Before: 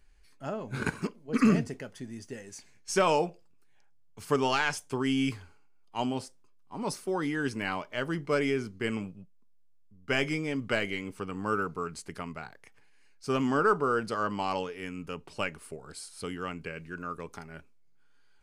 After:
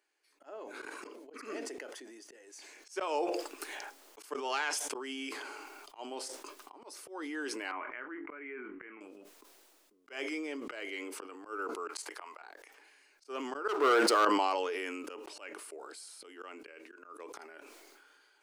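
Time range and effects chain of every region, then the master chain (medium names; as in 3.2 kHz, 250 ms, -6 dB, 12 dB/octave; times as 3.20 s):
7.71–9.01 s: steep low-pass 2.3 kHz 48 dB/octave + peaking EQ 550 Hz -15 dB 1.5 oct + doubling 24 ms -11 dB
11.87–12.42 s: high-pass 620 Hz + peaking EQ 920 Hz +5.5 dB 0.71 oct + slow attack 381 ms
13.68–14.25 s: waveshaping leveller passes 3 + level flattener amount 50%
whole clip: elliptic high-pass 310 Hz, stop band 50 dB; slow attack 170 ms; decay stretcher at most 22 dB/s; trim -5.5 dB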